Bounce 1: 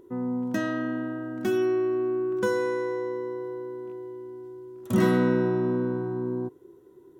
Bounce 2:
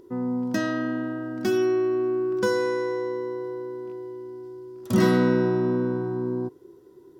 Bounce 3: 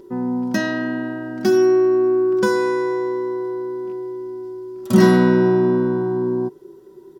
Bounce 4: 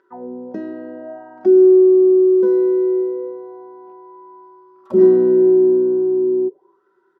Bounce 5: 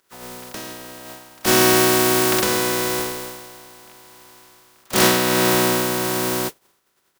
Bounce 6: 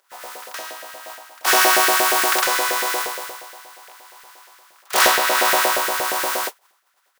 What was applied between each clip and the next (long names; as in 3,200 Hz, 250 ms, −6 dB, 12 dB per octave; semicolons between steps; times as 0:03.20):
parametric band 4,900 Hz +10.5 dB 0.45 octaves; level +2 dB
comb filter 5.2 ms, depth 56%; level +4.5 dB
envelope filter 390–1,600 Hz, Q 6, down, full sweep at −18 dBFS; level +6.5 dB
compressing power law on the bin magnitudes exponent 0.22; level −5 dB
auto-filter high-pass saw up 8.5 Hz 530–1,800 Hz